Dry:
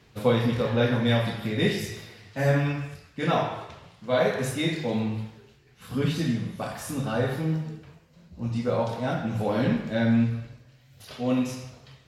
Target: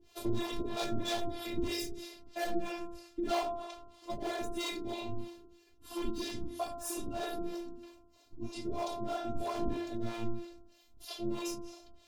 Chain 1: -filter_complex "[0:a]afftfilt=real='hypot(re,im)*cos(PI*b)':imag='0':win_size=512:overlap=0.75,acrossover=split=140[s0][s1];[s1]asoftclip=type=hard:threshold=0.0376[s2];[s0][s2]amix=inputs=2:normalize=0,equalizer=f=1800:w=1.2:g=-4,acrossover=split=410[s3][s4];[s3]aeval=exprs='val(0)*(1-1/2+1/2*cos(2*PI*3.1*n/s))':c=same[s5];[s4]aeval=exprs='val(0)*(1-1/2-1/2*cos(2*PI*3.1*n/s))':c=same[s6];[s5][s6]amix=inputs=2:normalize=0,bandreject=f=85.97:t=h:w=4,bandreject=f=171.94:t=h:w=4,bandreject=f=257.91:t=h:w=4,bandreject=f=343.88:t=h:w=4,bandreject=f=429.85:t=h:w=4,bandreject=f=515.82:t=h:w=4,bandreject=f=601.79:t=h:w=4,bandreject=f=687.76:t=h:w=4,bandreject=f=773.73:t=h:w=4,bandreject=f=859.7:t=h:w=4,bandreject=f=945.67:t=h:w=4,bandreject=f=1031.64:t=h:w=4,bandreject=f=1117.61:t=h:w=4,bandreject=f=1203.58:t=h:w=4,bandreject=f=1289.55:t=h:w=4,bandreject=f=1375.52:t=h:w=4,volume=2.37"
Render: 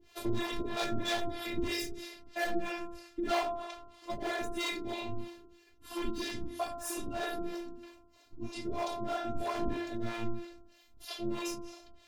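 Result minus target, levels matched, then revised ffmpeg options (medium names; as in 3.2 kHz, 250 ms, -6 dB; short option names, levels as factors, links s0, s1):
2 kHz band +4.5 dB
-filter_complex "[0:a]afftfilt=real='hypot(re,im)*cos(PI*b)':imag='0':win_size=512:overlap=0.75,acrossover=split=140[s0][s1];[s1]asoftclip=type=hard:threshold=0.0376[s2];[s0][s2]amix=inputs=2:normalize=0,equalizer=f=1800:w=1.2:g=-11.5,acrossover=split=410[s3][s4];[s3]aeval=exprs='val(0)*(1-1/2+1/2*cos(2*PI*3.1*n/s))':c=same[s5];[s4]aeval=exprs='val(0)*(1-1/2-1/2*cos(2*PI*3.1*n/s))':c=same[s6];[s5][s6]amix=inputs=2:normalize=0,bandreject=f=85.97:t=h:w=4,bandreject=f=171.94:t=h:w=4,bandreject=f=257.91:t=h:w=4,bandreject=f=343.88:t=h:w=4,bandreject=f=429.85:t=h:w=4,bandreject=f=515.82:t=h:w=4,bandreject=f=601.79:t=h:w=4,bandreject=f=687.76:t=h:w=4,bandreject=f=773.73:t=h:w=4,bandreject=f=859.7:t=h:w=4,bandreject=f=945.67:t=h:w=4,bandreject=f=1031.64:t=h:w=4,bandreject=f=1117.61:t=h:w=4,bandreject=f=1203.58:t=h:w=4,bandreject=f=1289.55:t=h:w=4,bandreject=f=1375.52:t=h:w=4,volume=2.37"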